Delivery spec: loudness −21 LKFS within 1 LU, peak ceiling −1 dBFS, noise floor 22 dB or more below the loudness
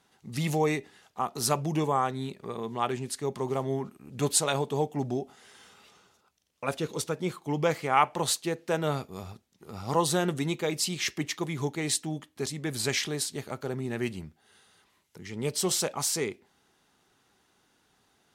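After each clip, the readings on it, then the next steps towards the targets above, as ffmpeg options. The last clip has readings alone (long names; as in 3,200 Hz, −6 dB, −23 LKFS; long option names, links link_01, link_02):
integrated loudness −30.0 LKFS; sample peak −7.5 dBFS; target loudness −21.0 LKFS
→ -af "volume=9dB,alimiter=limit=-1dB:level=0:latency=1"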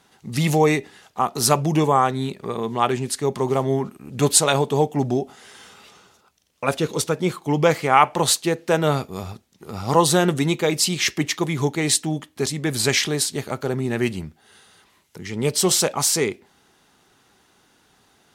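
integrated loudness −21.0 LKFS; sample peak −1.0 dBFS; background noise floor −60 dBFS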